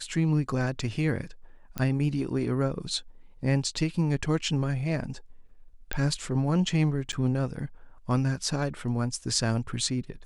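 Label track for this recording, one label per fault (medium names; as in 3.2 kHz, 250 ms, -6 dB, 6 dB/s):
1.780000	1.780000	pop -15 dBFS
5.930000	5.930000	pop -13 dBFS
7.120000	7.130000	dropout 8.9 ms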